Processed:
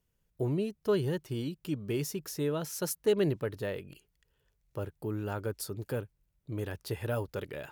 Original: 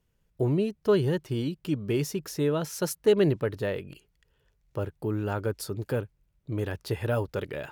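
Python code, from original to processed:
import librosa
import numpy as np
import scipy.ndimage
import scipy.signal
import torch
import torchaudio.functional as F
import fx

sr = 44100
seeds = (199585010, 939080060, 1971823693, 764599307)

y = fx.high_shelf(x, sr, hz=7100.0, db=7.5)
y = y * librosa.db_to_amplitude(-5.5)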